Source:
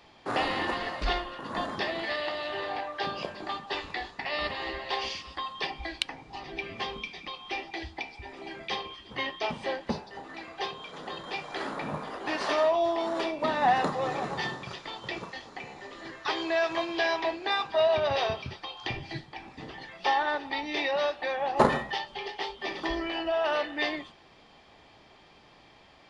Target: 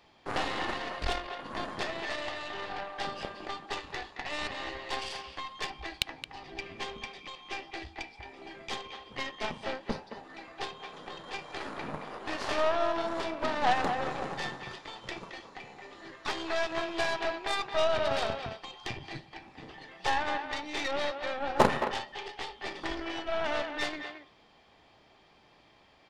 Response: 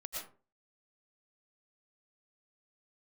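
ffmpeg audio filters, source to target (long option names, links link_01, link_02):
-filter_complex "[0:a]aeval=exprs='0.299*(cos(1*acos(clip(val(0)/0.299,-1,1)))-cos(1*PI/2))+0.0473*(cos(3*acos(clip(val(0)/0.299,-1,1)))-cos(3*PI/2))+0.0237*(cos(8*acos(clip(val(0)/0.299,-1,1)))-cos(8*PI/2))':channel_layout=same,asplit=2[link_01][link_02];[link_02]adelay=220,highpass=300,lowpass=3400,asoftclip=type=hard:threshold=-15.5dB,volume=-7dB[link_03];[link_01][link_03]amix=inputs=2:normalize=0"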